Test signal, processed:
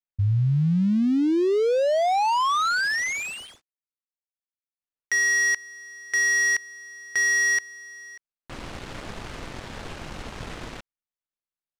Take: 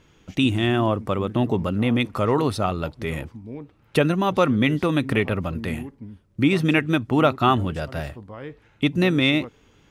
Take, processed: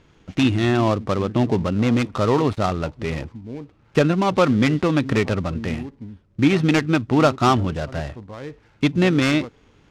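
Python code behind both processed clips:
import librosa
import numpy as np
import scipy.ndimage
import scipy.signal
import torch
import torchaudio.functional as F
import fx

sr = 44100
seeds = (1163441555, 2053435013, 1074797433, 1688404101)

y = fx.dead_time(x, sr, dead_ms=0.13)
y = fx.air_absorb(y, sr, metres=81.0)
y = y * 10.0 ** (2.5 / 20.0)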